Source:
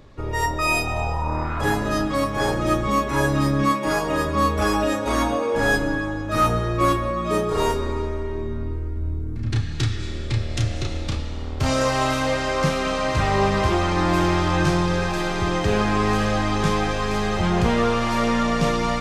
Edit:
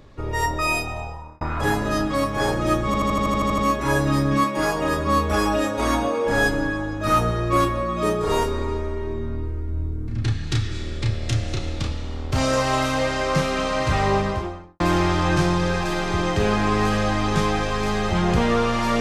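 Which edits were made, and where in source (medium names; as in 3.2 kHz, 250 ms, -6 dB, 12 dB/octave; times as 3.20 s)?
0.58–1.41 s: fade out
2.86 s: stutter 0.08 s, 10 plays
13.29–14.08 s: studio fade out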